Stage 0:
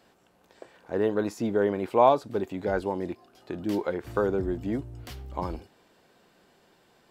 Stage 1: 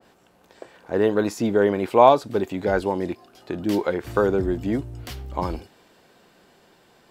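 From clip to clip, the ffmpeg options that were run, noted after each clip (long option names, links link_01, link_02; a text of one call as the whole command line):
ffmpeg -i in.wav -af "adynamicequalizer=threshold=0.01:dfrequency=1700:dqfactor=0.7:tfrequency=1700:tqfactor=0.7:attack=5:release=100:ratio=0.375:range=1.5:mode=boostabove:tftype=highshelf,volume=5.5dB" out.wav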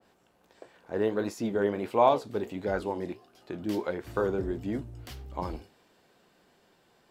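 ffmpeg -i in.wav -af "flanger=delay=9.5:depth=9.9:regen=-65:speed=1.5:shape=sinusoidal,volume=-4dB" out.wav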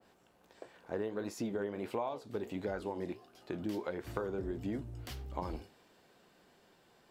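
ffmpeg -i in.wav -af "acompressor=threshold=-32dB:ratio=12,volume=-1dB" out.wav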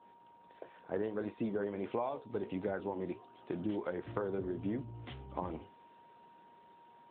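ffmpeg -i in.wav -af "aeval=exprs='val(0)+0.00112*sin(2*PI*940*n/s)':channel_layout=same,volume=1dB" -ar 8000 -c:a libopencore_amrnb -b:a 12200 out.amr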